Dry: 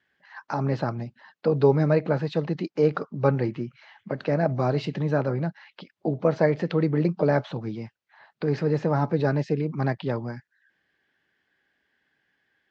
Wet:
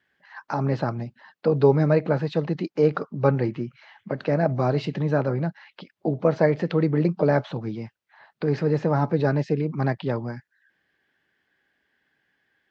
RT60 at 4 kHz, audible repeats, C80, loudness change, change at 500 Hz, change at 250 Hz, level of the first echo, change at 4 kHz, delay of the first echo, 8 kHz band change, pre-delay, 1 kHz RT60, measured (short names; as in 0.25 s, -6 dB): none, none, none, +1.5 dB, +1.5 dB, +1.5 dB, none, +0.5 dB, none, n/a, none, none